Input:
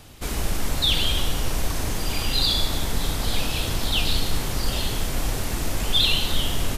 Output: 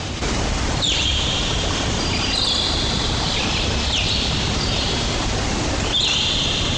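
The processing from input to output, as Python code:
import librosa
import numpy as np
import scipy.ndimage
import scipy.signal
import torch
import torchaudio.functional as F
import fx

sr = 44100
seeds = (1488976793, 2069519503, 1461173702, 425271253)

y = np.minimum(x, 2.0 * 10.0 ** (-20.0 / 20.0) - x)
y = scipy.signal.sosfilt(scipy.signal.butter(8, 7200.0, 'lowpass', fs=sr, output='sos'), y)
y = fx.dereverb_blind(y, sr, rt60_s=2.0)
y = scipy.signal.sosfilt(scipy.signal.butter(2, 55.0, 'highpass', fs=sr, output='sos'), y)
y = fx.rev_schroeder(y, sr, rt60_s=3.9, comb_ms=30, drr_db=1.0)
y = fx.env_flatten(y, sr, amount_pct=70)
y = F.gain(torch.from_numpy(y), 1.5).numpy()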